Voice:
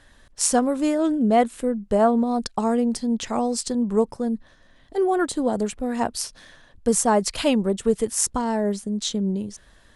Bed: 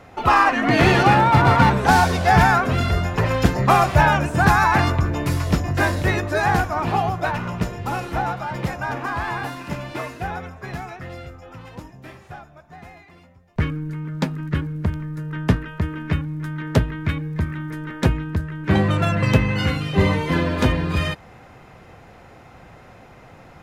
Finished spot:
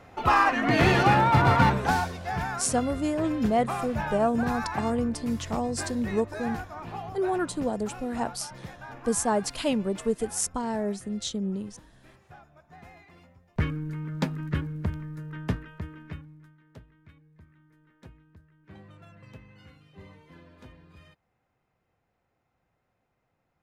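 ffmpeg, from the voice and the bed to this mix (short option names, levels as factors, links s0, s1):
-filter_complex "[0:a]adelay=2200,volume=0.501[s0];[1:a]volume=2,afade=t=out:st=1.67:d=0.47:silence=0.281838,afade=t=in:st=12.06:d=1.19:silence=0.266073,afade=t=out:st=14.39:d=2.18:silence=0.0473151[s1];[s0][s1]amix=inputs=2:normalize=0"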